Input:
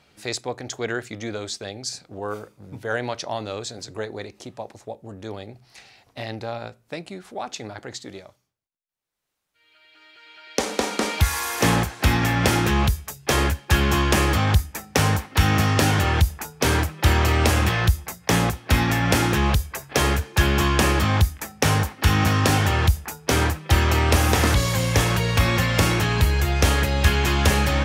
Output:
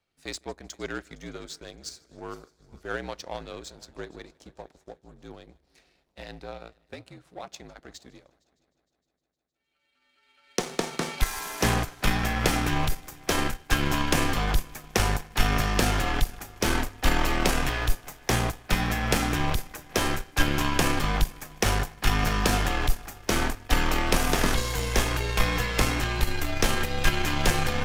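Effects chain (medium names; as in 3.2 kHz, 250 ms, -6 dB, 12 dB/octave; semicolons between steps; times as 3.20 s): multi-head delay 154 ms, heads first and third, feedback 66%, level -21 dB; frequency shift -55 Hz; power-law waveshaper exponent 1.4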